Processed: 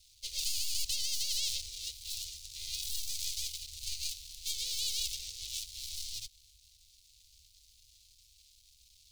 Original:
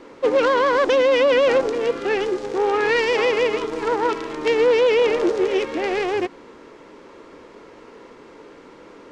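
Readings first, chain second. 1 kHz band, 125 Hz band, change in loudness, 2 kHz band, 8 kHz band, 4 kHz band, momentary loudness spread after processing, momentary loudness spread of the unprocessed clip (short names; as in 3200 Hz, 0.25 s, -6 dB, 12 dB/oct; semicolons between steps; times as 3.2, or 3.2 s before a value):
under -40 dB, -11.5 dB, -16.0 dB, -27.5 dB, n/a, -4.0 dB, 8 LU, 8 LU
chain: median filter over 41 samples; inverse Chebyshev band-stop 180–1700 Hz, stop band 50 dB; tilt shelf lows -6 dB; gain +2.5 dB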